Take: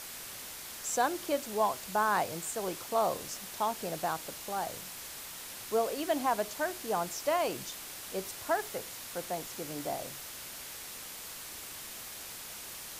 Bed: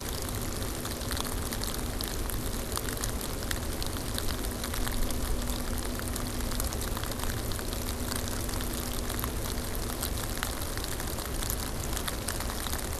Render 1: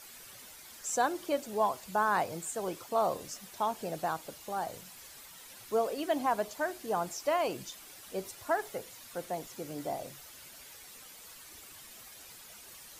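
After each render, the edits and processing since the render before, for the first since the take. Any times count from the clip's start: denoiser 10 dB, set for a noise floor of -45 dBFS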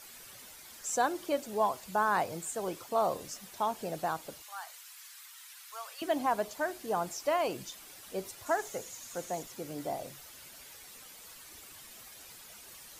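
4.42–6.02 HPF 1100 Hz 24 dB/oct; 8.46–9.43 bell 6700 Hz +11.5 dB 0.39 oct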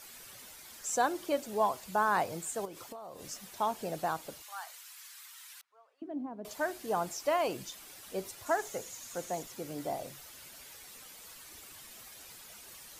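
2.65–3.28 compressor 16:1, threshold -41 dBFS; 5.61–6.45 band-pass 250 Hz, Q 2.5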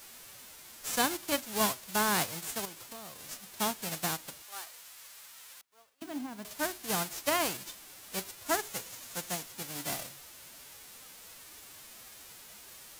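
spectral whitening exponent 0.3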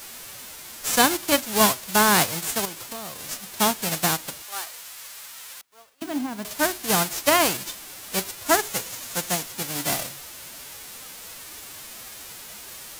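gain +10.5 dB

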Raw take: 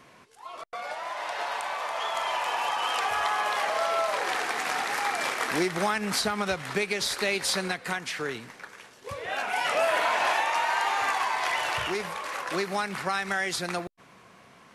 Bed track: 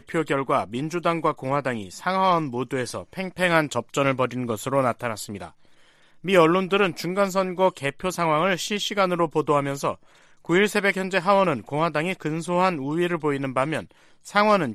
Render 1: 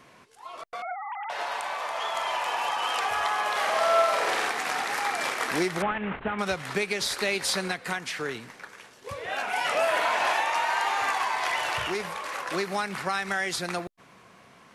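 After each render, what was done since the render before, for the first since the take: 0.82–1.3 sine-wave speech; 3.51–4.49 flutter echo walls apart 8.2 m, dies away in 0.82 s; 5.82–6.39 CVSD 16 kbps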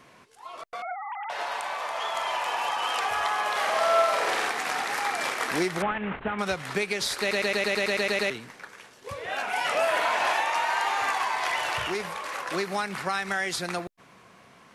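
7.2 stutter in place 0.11 s, 10 plays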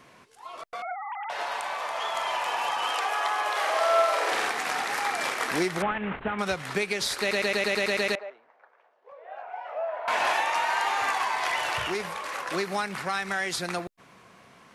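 2.91–4.32 elliptic high-pass 290 Hz; 8.15–10.08 ladder band-pass 760 Hz, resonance 50%; 12.88–13.52 core saturation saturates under 840 Hz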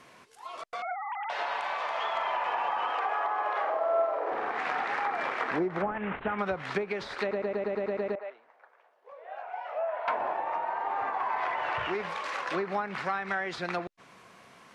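treble ducked by the level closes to 730 Hz, closed at -22 dBFS; low shelf 240 Hz -5 dB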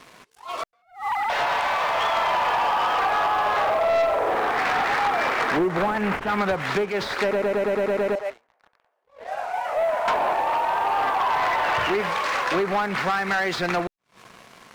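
sample leveller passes 3; attack slew limiter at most 190 dB/s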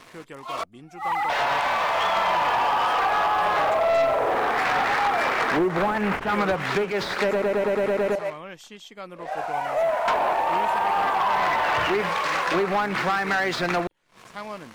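add bed track -17.5 dB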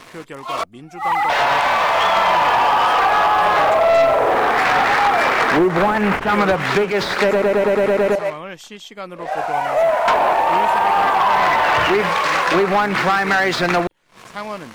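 gain +7 dB

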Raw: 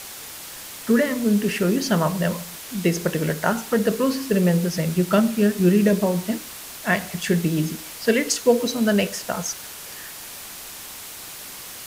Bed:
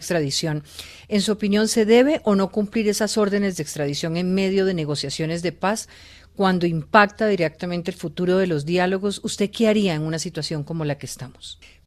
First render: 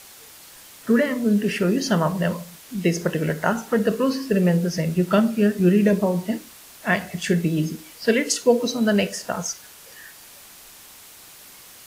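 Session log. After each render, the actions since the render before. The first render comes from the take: noise print and reduce 8 dB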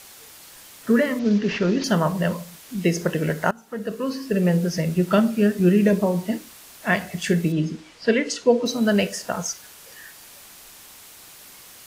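1.19–1.84 CVSD 32 kbps; 3.51–4.58 fade in, from -22.5 dB; 7.52–8.66 air absorption 96 m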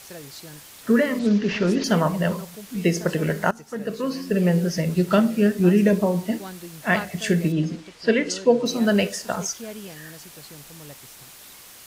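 add bed -19 dB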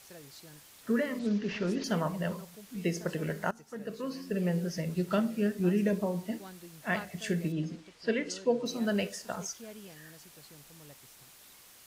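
gain -10.5 dB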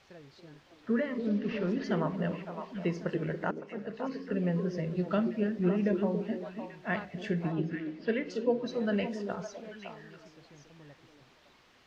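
air absorption 220 m; delay with a stepping band-pass 0.28 s, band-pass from 330 Hz, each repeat 1.4 oct, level -2 dB

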